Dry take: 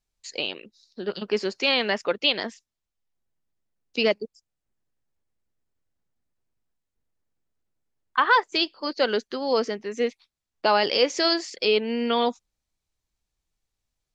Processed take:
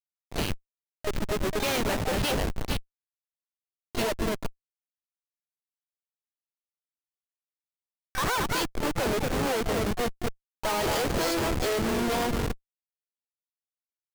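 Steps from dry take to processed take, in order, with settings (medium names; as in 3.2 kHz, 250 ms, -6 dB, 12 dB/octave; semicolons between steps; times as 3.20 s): echo whose repeats swap between lows and highs 227 ms, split 2.2 kHz, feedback 68%, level -7.5 dB; Schmitt trigger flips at -26 dBFS; harmony voices -4 st -18 dB, +7 st -6 dB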